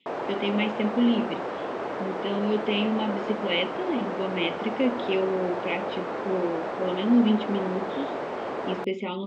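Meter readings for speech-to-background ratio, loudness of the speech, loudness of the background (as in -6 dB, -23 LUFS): 4.0 dB, -28.0 LUFS, -32.0 LUFS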